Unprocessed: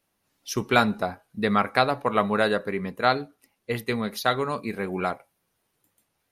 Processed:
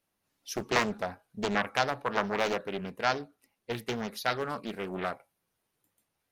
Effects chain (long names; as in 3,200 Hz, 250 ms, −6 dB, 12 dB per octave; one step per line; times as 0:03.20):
highs frequency-modulated by the lows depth 0.87 ms
level −6 dB